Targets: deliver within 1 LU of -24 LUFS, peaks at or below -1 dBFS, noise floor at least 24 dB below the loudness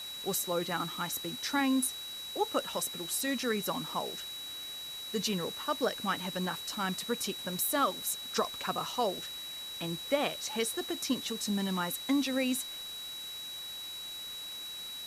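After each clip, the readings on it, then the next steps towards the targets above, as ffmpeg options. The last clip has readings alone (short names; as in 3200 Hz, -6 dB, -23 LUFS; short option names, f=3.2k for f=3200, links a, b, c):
steady tone 3900 Hz; tone level -40 dBFS; noise floor -42 dBFS; noise floor target -58 dBFS; loudness -33.5 LUFS; peak -16.0 dBFS; loudness target -24.0 LUFS
-> -af "bandreject=f=3.9k:w=30"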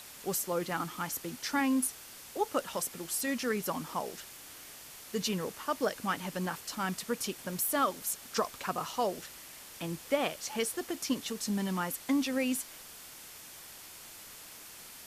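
steady tone none; noise floor -50 dBFS; noise floor target -58 dBFS
-> -af "afftdn=nr=8:nf=-50"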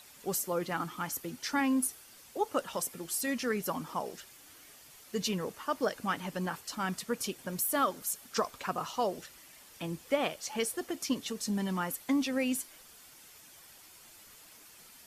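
noise floor -55 dBFS; noise floor target -58 dBFS
-> -af "afftdn=nr=6:nf=-55"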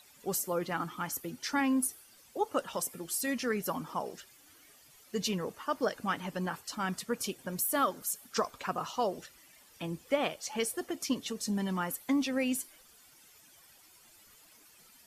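noise floor -60 dBFS; loudness -33.5 LUFS; peak -16.0 dBFS; loudness target -24.0 LUFS
-> -af "volume=9.5dB"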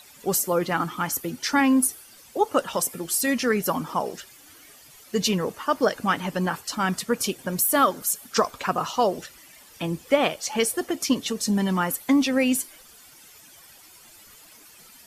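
loudness -24.0 LUFS; peak -6.5 dBFS; noise floor -50 dBFS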